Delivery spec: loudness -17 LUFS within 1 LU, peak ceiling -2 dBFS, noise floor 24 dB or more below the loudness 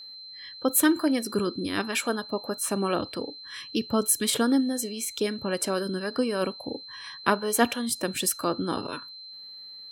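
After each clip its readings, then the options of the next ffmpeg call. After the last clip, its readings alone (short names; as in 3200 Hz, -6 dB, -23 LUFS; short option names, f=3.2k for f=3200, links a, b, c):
steady tone 4100 Hz; tone level -41 dBFS; loudness -27.0 LUFS; peak -6.5 dBFS; loudness target -17.0 LUFS
-> -af "bandreject=f=4.1k:w=30"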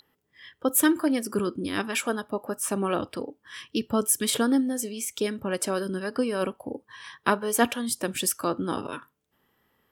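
steady tone none; loudness -27.0 LUFS; peak -7.0 dBFS; loudness target -17.0 LUFS
-> -af "volume=10dB,alimiter=limit=-2dB:level=0:latency=1"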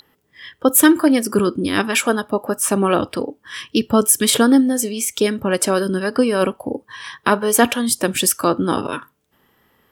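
loudness -17.5 LUFS; peak -2.0 dBFS; noise floor -64 dBFS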